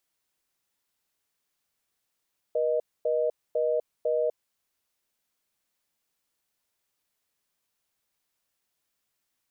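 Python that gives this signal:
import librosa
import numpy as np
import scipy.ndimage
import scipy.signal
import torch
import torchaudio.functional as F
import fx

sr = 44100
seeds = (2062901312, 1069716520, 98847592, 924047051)

y = fx.call_progress(sr, length_s=1.84, kind='reorder tone', level_db=-25.5)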